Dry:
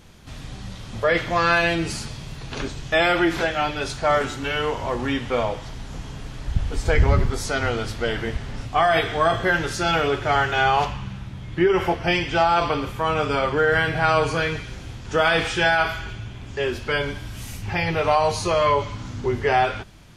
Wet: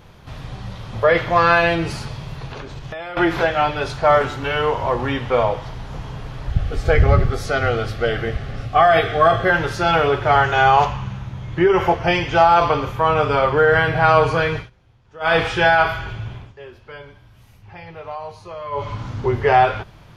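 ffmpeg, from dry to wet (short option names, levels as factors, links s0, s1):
-filter_complex "[0:a]asettb=1/sr,asplit=3[s0][s1][s2];[s0]atrim=end=2.464[s3];[s1]atrim=start=2.46:end=3.17,asetpts=PTS-STARTPTS,afade=t=in:d=0.004:c=qsin,afade=t=out:st=0.706:d=0.004:c=qsin,acompressor=threshold=0.0282:ratio=20:attack=3.2:release=140:knee=1:detection=peak[s4];[s2]atrim=start=3.166[s5];[s3][s4]acrossfade=d=0.004:c1=hsin:c2=qsin[s6];[s6][s5]acrossfade=d=0.004:c1=qsin:c2=hsin,asettb=1/sr,asplit=3[s7][s8][s9];[s7]atrim=end=6.504[s10];[s8]atrim=start=6.5:end=9.5,asetpts=PTS-STARTPTS,afade=t=in:d=0.004:c=qsin,afade=t=out:st=2.996:d=0.004:c=qsin,asuperstop=centerf=950:order=12:qfactor=4.4[s11];[s9]atrim=start=9.496[s12];[s10][s11]acrossfade=d=0.004:c1=hsin:c2=qsin[s13];[s13][s12]acrossfade=d=0.004:c1=qsin:c2=hsin,asettb=1/sr,asplit=3[s14][s15][s16];[s14]atrim=end=10.444[s17];[s15]atrim=start=10.44:end=12.96,asetpts=PTS-STARTPTS,afade=t=in:d=0.004:c=qsin,afade=t=out:st=2.516:d=0.004:c=qsin,equalizer=f=6500:w=4.1:g=8.5[s18];[s16]atrim=start=12.956[s19];[s17][s18]acrossfade=d=0.004:c1=hsin:c2=qsin[s20];[s20][s19]acrossfade=d=0.004:c1=qsin:c2=hsin,asplit=5[s21][s22][s23][s24][s25];[s21]atrim=end=14.7,asetpts=PTS-STARTPTS,afade=t=out:st=14.58:d=0.12:silence=0.0668344[s26];[s22]atrim=start=14.7:end=15.2,asetpts=PTS-STARTPTS,volume=0.0668[s27];[s23]atrim=start=15.2:end=16.54,asetpts=PTS-STARTPTS,afade=t=in:d=0.12:silence=0.0668344,afade=t=out:st=1.13:d=0.21:silence=0.125893[s28];[s24]atrim=start=16.54:end=18.71,asetpts=PTS-STARTPTS,volume=0.126[s29];[s25]atrim=start=18.71,asetpts=PTS-STARTPTS,afade=t=in:d=0.21:silence=0.125893[s30];[s26][s27][s28][s29][s30]concat=n=5:v=0:a=1,equalizer=f=125:t=o:w=1:g=5,equalizer=f=250:t=o:w=1:g=-4,equalizer=f=500:t=o:w=1:g=4,equalizer=f=1000:t=o:w=1:g=5,equalizer=f=8000:t=o:w=1:g=-10,volume=1.19"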